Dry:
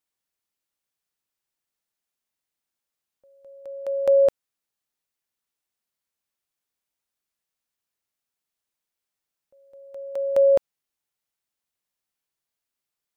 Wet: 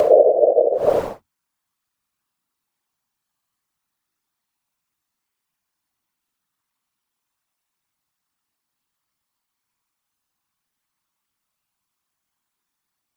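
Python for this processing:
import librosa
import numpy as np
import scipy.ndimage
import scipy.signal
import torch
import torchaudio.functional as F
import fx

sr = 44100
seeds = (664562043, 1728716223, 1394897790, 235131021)

y = fx.graphic_eq(x, sr, hz=(125, 250, 500, 1000), db=(7, 5, -8, 9))
y = fx.paulstretch(y, sr, seeds[0], factor=4.9, window_s=0.1, from_s=4.09)
y = fx.whisperise(y, sr, seeds[1])
y = y * 10.0 ** (5.0 / 20.0)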